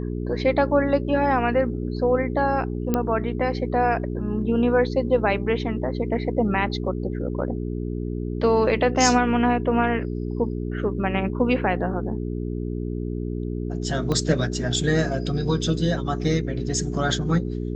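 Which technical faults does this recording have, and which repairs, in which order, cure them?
hum 60 Hz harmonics 7 -28 dBFS
2.94 pop -9 dBFS
14.12 pop -13 dBFS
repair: de-click; de-hum 60 Hz, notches 7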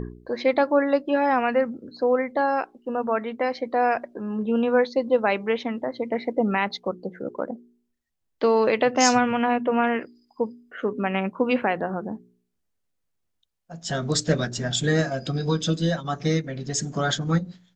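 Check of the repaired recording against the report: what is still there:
14.12 pop

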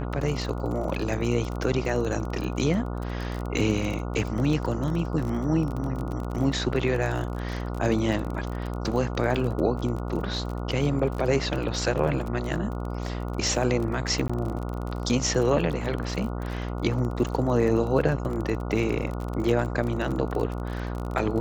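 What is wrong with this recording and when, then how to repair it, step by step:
buzz 60 Hz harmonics 24 -31 dBFS
crackle 32/s -30 dBFS
14.28–14.29 gap 15 ms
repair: de-click; de-hum 60 Hz, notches 24; interpolate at 14.28, 15 ms

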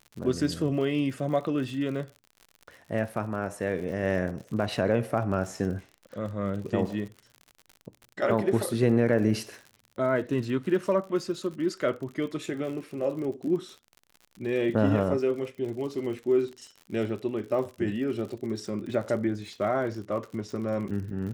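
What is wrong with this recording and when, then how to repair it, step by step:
crackle 57/s -37 dBFS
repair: de-click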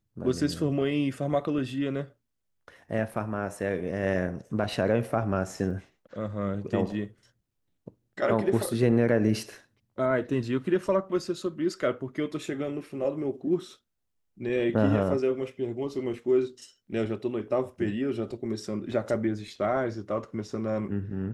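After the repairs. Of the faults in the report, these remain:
none

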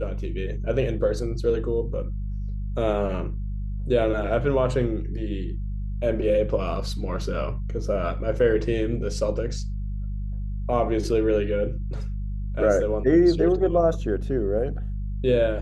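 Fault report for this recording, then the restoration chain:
hum 50 Hz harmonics 4 -29 dBFS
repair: de-hum 50 Hz, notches 4

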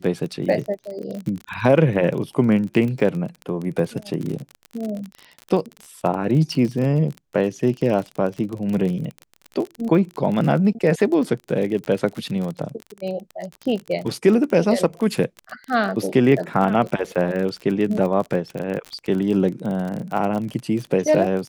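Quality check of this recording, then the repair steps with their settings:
crackle 36/s -26 dBFS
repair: de-click

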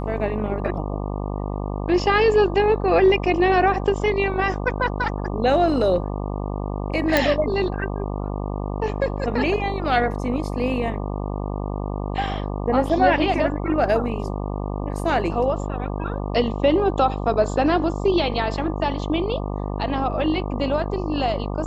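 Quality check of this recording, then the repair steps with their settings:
buzz 50 Hz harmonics 24 -27 dBFS
7.17 pop -4 dBFS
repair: de-click; de-hum 50 Hz, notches 24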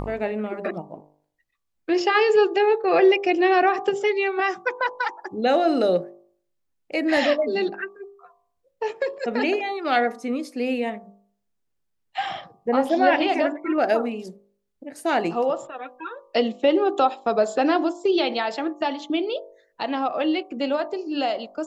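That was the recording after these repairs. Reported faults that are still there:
none

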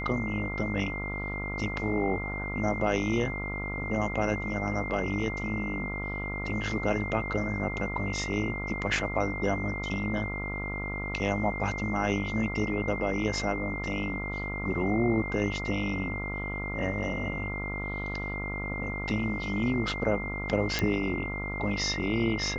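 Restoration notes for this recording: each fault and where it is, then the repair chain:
buzz 50 Hz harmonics 28 -36 dBFS
tone 2100 Hz -35 dBFS
20.79 pop -12 dBFS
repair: de-click; de-hum 50 Hz, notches 28; notch 2100 Hz, Q 30

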